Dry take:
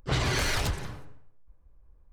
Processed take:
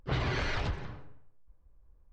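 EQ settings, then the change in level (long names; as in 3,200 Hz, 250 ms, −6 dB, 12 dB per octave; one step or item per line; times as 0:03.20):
Gaussian smoothing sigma 2 samples
−3.5 dB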